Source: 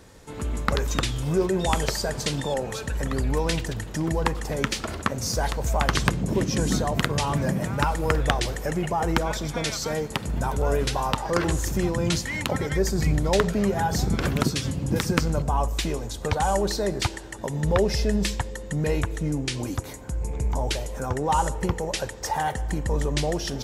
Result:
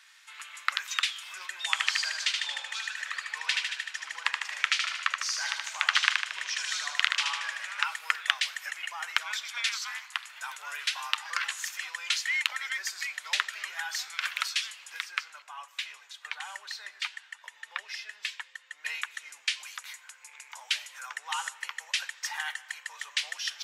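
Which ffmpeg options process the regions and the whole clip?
ffmpeg -i in.wav -filter_complex "[0:a]asettb=1/sr,asplit=3[link_01][link_02][link_03];[link_01]atrim=end=1.714[link_04];[link_02]atrim=start=1.71:end=7.85,asetpts=PTS-STARTPTS,afade=type=in:duration=0.004:curve=qsin,afade=type=out:start_time=6.136:duration=0.004:curve=qsin,lowpass=8000,aecho=1:1:76|152|228|304|380|456|532|608:0.631|0.36|0.205|0.117|0.0666|0.038|0.0216|0.0123,atrim=end_sample=270774[link_05];[link_03]atrim=start=7.846[link_06];[link_04][link_05]acrossfade=duration=0.004:curve1=hsin:curve2=qsin[link_07];[link_07][link_06]acrossfade=duration=0.004:curve1=qsin:curve2=hsin,asettb=1/sr,asplit=3[link_08][link_09][link_10];[link_08]atrim=end=9.694[link_11];[link_09]atrim=start=9.69:end=10.27,asetpts=PTS-STARTPTS,afade=type=in:duration=0.004:curve=qsin,afade=type=out:start_time=0.576:duration=0.004:curve=qsin,lowshelf=frequency=650:width_type=q:width=3:gain=-12,aeval=exprs='val(0)*sin(2*PI*120*n/s)':channel_layout=same[link_12];[link_10]atrim=start=10.266[link_13];[link_11][link_12]acrossfade=duration=0.004:curve1=hsin:curve2=qsin[link_14];[link_14][link_13]acrossfade=duration=0.004:curve1=qsin:curve2=hsin,asettb=1/sr,asplit=3[link_15][link_16][link_17];[link_15]atrim=end=14.964[link_18];[link_16]atrim=start=14.96:end=18.85,asetpts=PTS-STARTPTS,afade=type=in:duration=0.004:curve=qsin,afade=type=out:start_time=3.886:duration=0.004:curve=qsin,bass=frequency=250:gain=13,treble=frequency=4000:gain=-6,flanger=delay=1.8:depth=1.4:regen=-73:speed=1.2:shape=triangular[link_19];[link_17]atrim=start=18.846[link_20];[link_18][link_19]acrossfade=duration=0.004:curve1=hsin:curve2=qsin[link_21];[link_21][link_20]acrossfade=duration=0.004:curve1=qsin:curve2=hsin,highpass=frequency=1200:width=0.5412,highpass=frequency=1200:width=1.3066,equalizer=frequency=2600:width=0.62:gain=12.5,volume=-8dB" out.wav

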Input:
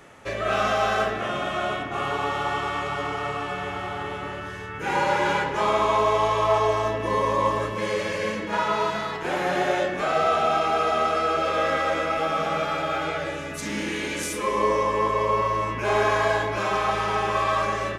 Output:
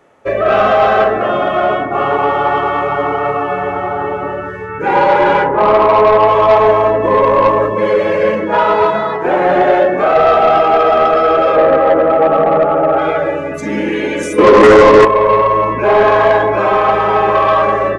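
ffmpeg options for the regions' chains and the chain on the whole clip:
ffmpeg -i in.wav -filter_complex "[0:a]asettb=1/sr,asplit=3[link_01][link_02][link_03];[link_01]atrim=end=5.464[link_04];[link_02]atrim=start=5.46:end=6.28,asetpts=PTS-STARTPTS,afade=type=in:duration=0.004:curve=qsin,afade=type=out:start_time=0.816:duration=0.004:curve=qsin,lowpass=2000,asplit=2[link_05][link_06];[link_06]adelay=28,volume=-14dB[link_07];[link_05][link_07]amix=inputs=2:normalize=0,atrim=end_sample=36162[link_08];[link_03]atrim=start=6.276[link_09];[link_04][link_08]acrossfade=duration=0.004:curve1=hsin:curve2=qsin[link_10];[link_10][link_09]acrossfade=duration=0.004:curve1=qsin:curve2=hsin,asettb=1/sr,asplit=3[link_11][link_12][link_13];[link_11]atrim=end=8.034[link_14];[link_12]atrim=start=8.03:end=8.86,asetpts=PTS-STARTPTS,afade=type=in:duration=0.004:curve=qsin,afade=type=out:start_time=0.826:duration=0.004:curve=qsin,asoftclip=type=hard:threshold=-16.5dB,asplit=2[link_15][link_16];[link_16]adelay=31,volume=-7.5dB[link_17];[link_15][link_17]amix=inputs=2:normalize=0,atrim=end_sample=36603[link_18];[link_13]atrim=start=8.856[link_19];[link_14][link_18]acrossfade=duration=0.004:curve1=hsin:curve2=qsin[link_20];[link_20][link_19]acrossfade=duration=0.004:curve1=qsin:curve2=hsin,asettb=1/sr,asplit=3[link_21][link_22][link_23];[link_21]atrim=end=11.564[link_24];[link_22]atrim=start=11.56:end=12.98,asetpts=PTS-STARTPTS,afade=type=in:duration=0.004:curve=qsin,afade=type=out:start_time=1.416:duration=0.004:curve=qsin,lowpass=1200,equalizer=frequency=370:width=0.39:gain=3.5[link_25];[link_23]atrim=start=12.976[link_26];[link_24][link_25]acrossfade=duration=0.004:curve1=hsin:curve2=qsin[link_27];[link_27][link_26]acrossfade=duration=0.004:curve1=qsin:curve2=hsin,asettb=1/sr,asplit=3[link_28][link_29][link_30];[link_28]atrim=end=14.384[link_31];[link_29]atrim=start=14.38:end=15.05,asetpts=PTS-STARTPTS,afade=type=in:duration=0.004:curve=qsin,afade=type=out:start_time=0.666:duration=0.004:curve=qsin,equalizer=frequency=310:width=1:gain=10,acontrast=63,bandreject=frequency=57.82:width_type=h:width=4,bandreject=frequency=115.64:width_type=h:width=4,bandreject=frequency=173.46:width_type=h:width=4,bandreject=frequency=231.28:width_type=h:width=4,bandreject=frequency=289.1:width_type=h:width=4,bandreject=frequency=346.92:width_type=h:width=4,bandreject=frequency=404.74:width_type=h:width=4,bandreject=frequency=462.56:width_type=h:width=4,bandreject=frequency=520.38:width_type=h:width=4,bandreject=frequency=578.2:width_type=h:width=4,bandreject=frequency=636.02:width_type=h:width=4,bandreject=frequency=693.84:width_type=h:width=4,bandreject=frequency=751.66:width_type=h:width=4,bandreject=frequency=809.48:width_type=h:width=4,bandreject=frequency=867.3:width_type=h:width=4,bandreject=frequency=925.12:width_type=h:width=4,bandreject=frequency=982.94:width_type=h:width=4,bandreject=frequency=1040.76:width_type=h:width=4,bandreject=frequency=1098.58:width_type=h:width=4,bandreject=frequency=1156.4:width_type=h:width=4,bandreject=frequency=1214.22:width_type=h:width=4,bandreject=frequency=1272.04:width_type=h:width=4,bandreject=frequency=1329.86:width_type=h:width=4,bandreject=frequency=1387.68:width_type=h:width=4,bandreject=frequency=1445.5:width_type=h:width=4,bandreject=frequency=1503.32:width_type=h:width=4,bandreject=frequency=1561.14:width_type=h:width=4[link_32];[link_30]atrim=start=15.046[link_33];[link_31][link_32]acrossfade=duration=0.004:curve1=hsin:curve2=qsin[link_34];[link_34][link_33]acrossfade=duration=0.004:curve1=qsin:curve2=hsin,afftdn=noise_reduction=15:noise_floor=-33,equalizer=frequency=540:width=0.45:gain=10.5,acontrast=83,volume=-1dB" out.wav

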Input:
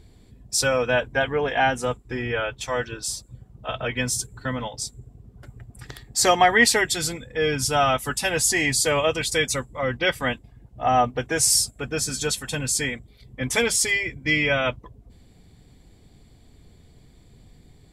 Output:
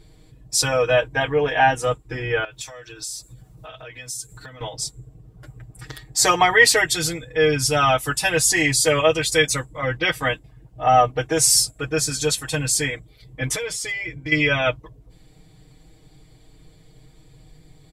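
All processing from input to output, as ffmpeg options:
ffmpeg -i in.wav -filter_complex "[0:a]asettb=1/sr,asplit=3[link_01][link_02][link_03];[link_01]atrim=end=2.444[link_04];[link_02]atrim=start=2.44:end=4.61,asetpts=PTS-STARTPTS,afade=type=in:duration=0.004:curve=qsin,afade=type=out:start_time=2.166:duration=0.004:curve=qsin,bandreject=frequency=3100:width=13,acompressor=threshold=-40dB:ratio=10:attack=3.2:release=140:knee=1:detection=peak,highshelf=frequency=2800:gain=11.5[link_05];[link_03]atrim=start=4.606[link_06];[link_04][link_05]acrossfade=duration=0.004:curve1=hsin:curve2=qsin[link_07];[link_07][link_06]acrossfade=duration=0.004:curve1=qsin:curve2=hsin,asettb=1/sr,asplit=3[link_08][link_09][link_10];[link_08]atrim=end=13.554[link_11];[link_09]atrim=start=13.55:end=14.32,asetpts=PTS-STARTPTS,afade=type=in:duration=0.004:curve=qsin,afade=type=out:start_time=0.766:duration=0.004:curve=qsin,highshelf=frequency=7100:gain=-7,acompressor=threshold=-28dB:ratio=6:attack=3.2:release=140:knee=1:detection=peak,asoftclip=type=hard:threshold=-22dB[link_12];[link_10]atrim=start=14.316[link_13];[link_11][link_12]acrossfade=duration=0.004:curve1=hsin:curve2=qsin[link_14];[link_14][link_13]acrossfade=duration=0.004:curve1=qsin:curve2=hsin,equalizer=frequency=210:width=5.7:gain=-13,aecho=1:1:6.4:0.98" out.wav

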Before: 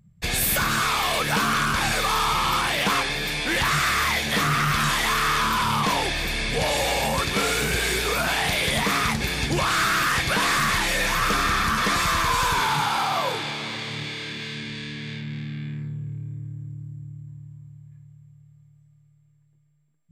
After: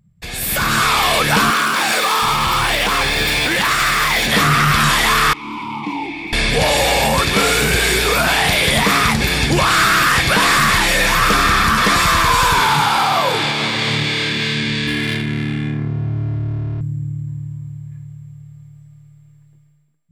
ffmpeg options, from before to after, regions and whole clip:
ffmpeg -i in.wav -filter_complex "[0:a]asettb=1/sr,asplit=3[link_01][link_02][link_03];[link_01]atrim=end=1.504[link_04];[link_02]atrim=start=1.5:end=4.27,asetpts=PTS-STARTPTS,afade=type=in:duration=0.004:curve=qsin,afade=type=out:start_time=2.766:duration=0.004:curve=qsin,aeval=exprs='val(0)+0.5*0.0282*sgn(val(0))':channel_layout=same,acrossover=split=200[link_05][link_06];[link_05]adelay=720[link_07];[link_07][link_06]amix=inputs=2:normalize=0,atrim=end_sample=122157[link_08];[link_03]atrim=start=4.266[link_09];[link_04][link_08]acrossfade=duration=0.004:curve1=hsin:curve2=qsin[link_10];[link_10][link_09]acrossfade=duration=0.004:curve1=qsin:curve2=hsin,asettb=1/sr,asplit=3[link_11][link_12][link_13];[link_11]atrim=end=5.334[link_14];[link_12]atrim=start=5.33:end=6.33,asetpts=PTS-STARTPTS,afade=type=in:duration=0.004:curve=qsin,afade=type=out:start_time=0.996:duration=0.004:curve=qsin,acrossover=split=330|3000[link_15][link_16][link_17];[link_16]acompressor=threshold=-25dB:ratio=6:attack=3.2:release=140:knee=2.83:detection=peak[link_18];[link_15][link_18][link_17]amix=inputs=3:normalize=0,asplit=3[link_19][link_20][link_21];[link_19]bandpass=frequency=300:width_type=q:width=8,volume=0dB[link_22];[link_20]bandpass=frequency=870:width_type=q:width=8,volume=-6dB[link_23];[link_21]bandpass=frequency=2240:width_type=q:width=8,volume=-9dB[link_24];[link_22][link_23][link_24]amix=inputs=3:normalize=0[link_25];[link_13]atrim=start=6.326[link_26];[link_14][link_25]acrossfade=duration=0.004:curve1=hsin:curve2=qsin[link_27];[link_27][link_26]acrossfade=duration=0.004:curve1=qsin:curve2=hsin,asettb=1/sr,asplit=3[link_28][link_29][link_30];[link_28]atrim=end=14.874[link_31];[link_29]atrim=start=14.87:end=16.81,asetpts=PTS-STARTPTS,afade=type=in:duration=0.004:curve=qsin,afade=type=out:start_time=1.936:duration=0.004:curve=qsin,aeval=exprs='val(0)+0.5*0.0075*sgn(val(0))':channel_layout=same,aecho=1:1:2.9:0.7,atrim=end_sample=85554,adynamicsmooth=sensitivity=5.5:basefreq=1800[link_32];[link_30]atrim=start=16.806[link_33];[link_31][link_32]acrossfade=duration=0.004:curve1=hsin:curve2=qsin[link_34];[link_34][link_33]acrossfade=duration=0.004:curve1=qsin:curve2=hsin,alimiter=limit=-22dB:level=0:latency=1:release=174,bandreject=frequency=6300:width=17,dynaudnorm=framelen=160:gausssize=7:maxgain=14dB" out.wav

